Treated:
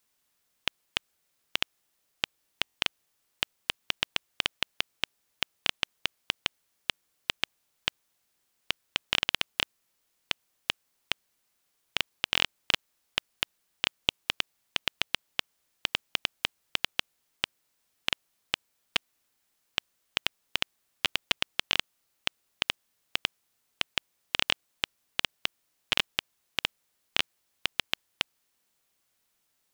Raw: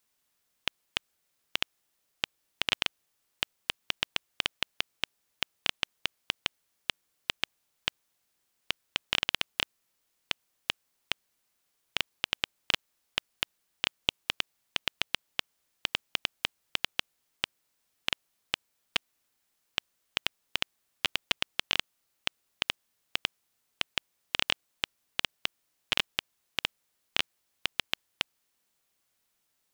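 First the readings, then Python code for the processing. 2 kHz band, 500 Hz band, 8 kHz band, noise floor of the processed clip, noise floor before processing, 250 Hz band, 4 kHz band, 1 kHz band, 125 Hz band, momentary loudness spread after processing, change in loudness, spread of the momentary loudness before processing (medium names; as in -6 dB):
+1.5 dB, +1.5 dB, +1.5 dB, -76 dBFS, -77 dBFS, +1.5 dB, +1.5 dB, +1.5 dB, +1.5 dB, 7 LU, +1.5 dB, 7 LU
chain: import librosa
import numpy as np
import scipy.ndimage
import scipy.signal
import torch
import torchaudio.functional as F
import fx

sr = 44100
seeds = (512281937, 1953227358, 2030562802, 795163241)

y = fx.buffer_glitch(x, sr, at_s=(2.62, 12.32), block=1024, repeats=5)
y = y * 10.0 ** (1.5 / 20.0)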